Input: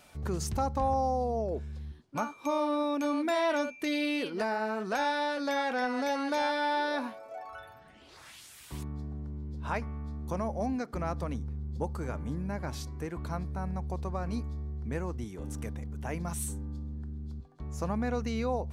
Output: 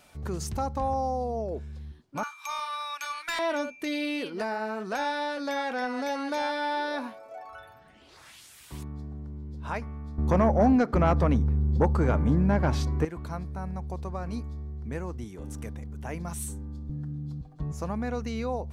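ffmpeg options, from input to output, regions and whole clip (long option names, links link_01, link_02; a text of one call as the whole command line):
ffmpeg -i in.wav -filter_complex "[0:a]asettb=1/sr,asplit=3[link_01][link_02][link_03];[link_01]atrim=end=2.234[link_04];[link_02]atrim=start=2.23:end=3.39,asetpts=PTS-STARTPTS,afade=type=in:duration=0.004:curve=qsin,afade=type=out:start_time=1.156:duration=0.004:curve=qsin,highpass=frequency=1200:width=0.5412,highpass=frequency=1200:width=1.3066,acontrast=68,aeval=exprs='clip(val(0),-1,0.0447)':channel_layout=same[link_05];[link_03]atrim=start=3.386[link_06];[link_04][link_05]acrossfade=duration=0.004:curve1=hsin:curve2=qsin[link_07];[link_07][link_06]acrossfade=duration=0.004:curve1=qsin:curve2=hsin,asettb=1/sr,asplit=3[link_08][link_09][link_10];[link_08]atrim=end=10.184[link_11];[link_09]atrim=start=10.18:end=13.05,asetpts=PTS-STARTPTS,afade=type=in:duration=0.004:curve=qsin,afade=type=out:start_time=2.866:duration=0.004:curve=qsin,aemphasis=mode=reproduction:type=75kf,acontrast=44,aeval=exprs='0.2*sin(PI/2*1.41*val(0)/0.2)':channel_layout=same[link_12];[link_10]atrim=start=13.046[link_13];[link_11][link_12]acrossfade=duration=0.004:curve1=hsin:curve2=qsin[link_14];[link_14][link_13]acrossfade=duration=0.004:curve1=qsin:curve2=hsin,asettb=1/sr,asplit=3[link_15][link_16][link_17];[link_15]atrim=end=16.894[link_18];[link_16]atrim=start=16.89:end=17.72,asetpts=PTS-STARTPTS,afade=type=in:duration=0.004:curve=qsin,afade=type=out:start_time=0.826:duration=0.004:curve=qsin,lowshelf=frequency=290:gain=10,aecho=1:1:6.5:0.99,atrim=end_sample=36603[link_19];[link_17]atrim=start=17.716[link_20];[link_18][link_19]acrossfade=duration=0.004:curve1=hsin:curve2=qsin[link_21];[link_21][link_20]acrossfade=duration=0.004:curve1=qsin:curve2=hsin" out.wav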